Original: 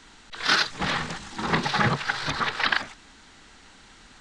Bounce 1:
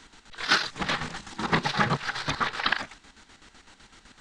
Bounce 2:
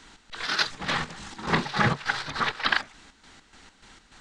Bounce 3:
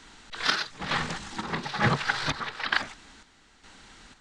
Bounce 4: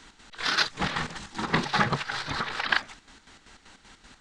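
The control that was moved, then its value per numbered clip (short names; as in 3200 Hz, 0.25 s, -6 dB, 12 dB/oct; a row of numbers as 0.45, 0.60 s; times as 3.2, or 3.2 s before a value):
chopper, rate: 7.9, 3.4, 1.1, 5.2 Hz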